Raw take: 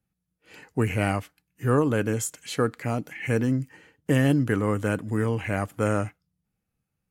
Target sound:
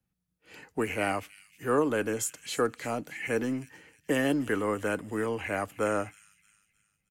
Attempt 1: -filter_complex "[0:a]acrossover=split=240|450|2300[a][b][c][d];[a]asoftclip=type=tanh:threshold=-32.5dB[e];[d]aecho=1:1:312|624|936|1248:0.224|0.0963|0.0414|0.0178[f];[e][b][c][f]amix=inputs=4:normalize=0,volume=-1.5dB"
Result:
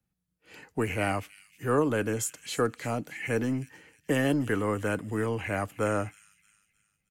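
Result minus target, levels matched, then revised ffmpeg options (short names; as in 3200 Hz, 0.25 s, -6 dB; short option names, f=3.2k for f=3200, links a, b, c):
soft clip: distortion -4 dB
-filter_complex "[0:a]acrossover=split=240|450|2300[a][b][c][d];[a]asoftclip=type=tanh:threshold=-43.5dB[e];[d]aecho=1:1:312|624|936|1248:0.224|0.0963|0.0414|0.0178[f];[e][b][c][f]amix=inputs=4:normalize=0,volume=-1.5dB"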